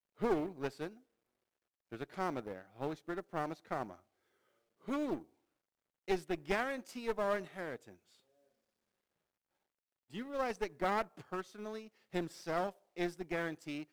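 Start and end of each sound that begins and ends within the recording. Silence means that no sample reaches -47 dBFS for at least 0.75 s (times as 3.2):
1.92–3.95
4.88–5.22
6.08–7.92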